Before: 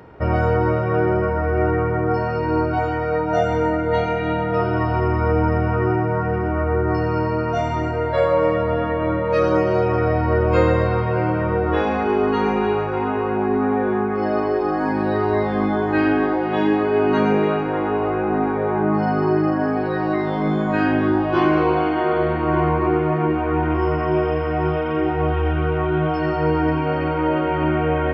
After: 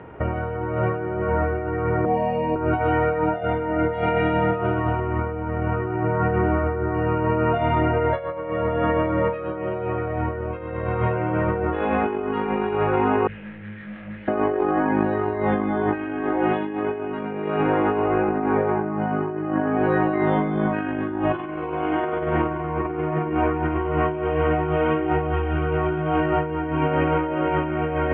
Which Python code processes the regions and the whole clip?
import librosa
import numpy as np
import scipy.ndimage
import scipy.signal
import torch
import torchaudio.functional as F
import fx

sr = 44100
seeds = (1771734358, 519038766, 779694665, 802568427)

y = fx.chain(x, sr, fx.high_shelf(hz=4100.0, db=4.5),
    fx.fixed_phaser(hz=370.0, stages=6), at=(2.05, 2.56))
y = fx.chain(y, sr, fx.brickwall_bandstop(low_hz=220.0, high_hz=1500.0),
    fx.overload_stage(gain_db=34.0),
    fx.detune_double(cents=41), at=(13.27, 14.28))
y = scipy.signal.sosfilt(scipy.signal.butter(8, 3200.0, 'lowpass', fs=sr, output='sos'), y)
y = fx.low_shelf(y, sr, hz=70.0, db=-3.0)
y = fx.over_compress(y, sr, threshold_db=-22.0, ratio=-0.5)